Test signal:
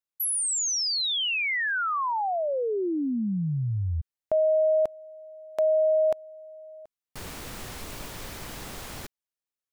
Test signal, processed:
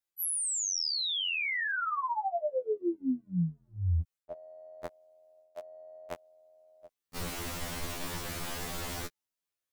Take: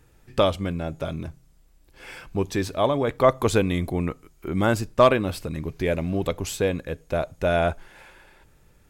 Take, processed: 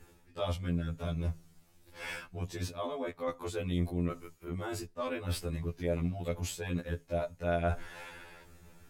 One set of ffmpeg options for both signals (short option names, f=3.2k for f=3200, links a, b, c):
-af "areverse,acompressor=threshold=-32dB:ratio=8:attack=4:release=458:knee=1:detection=peak,areverse,afftfilt=real='re*2*eq(mod(b,4),0)':imag='im*2*eq(mod(b,4),0)':win_size=2048:overlap=0.75,volume=4dB"